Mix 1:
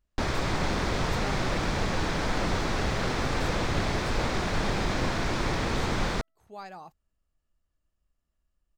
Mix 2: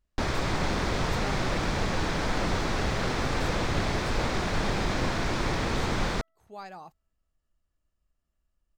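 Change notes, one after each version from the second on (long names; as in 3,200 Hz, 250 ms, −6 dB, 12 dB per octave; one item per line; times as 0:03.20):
second sound +8.5 dB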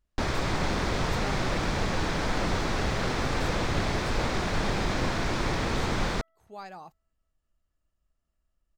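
second sound +5.5 dB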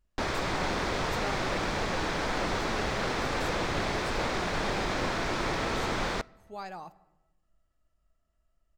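speech: send on
first sound: add bass and treble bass −7 dB, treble −2 dB
second sound +10.5 dB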